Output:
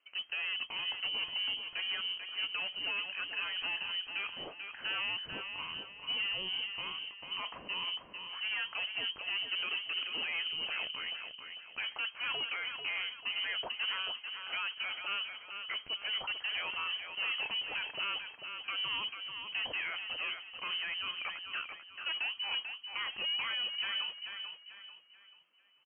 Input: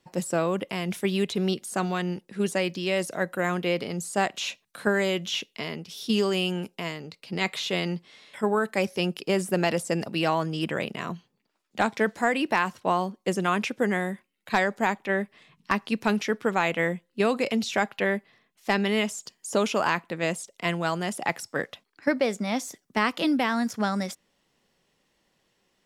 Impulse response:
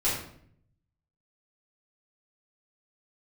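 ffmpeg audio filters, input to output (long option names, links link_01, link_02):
-filter_complex "[0:a]alimiter=limit=-14.5dB:level=0:latency=1:release=29,asoftclip=type=tanh:threshold=-26.5dB,lowpass=frequency=2600:width_type=q:width=0.5098,lowpass=frequency=2600:width_type=q:width=0.6013,lowpass=frequency=2600:width_type=q:width=0.9,lowpass=frequency=2600:width_type=q:width=2.563,afreqshift=-3100,asplit=2[link_01][link_02];[link_02]aecho=0:1:441|882|1323|1764:0.447|0.165|0.0612|0.0226[link_03];[link_01][link_03]amix=inputs=2:normalize=0,asetrate=45392,aresample=44100,atempo=0.971532,volume=-5.5dB" -ar 16000 -c:a libvorbis -b:a 64k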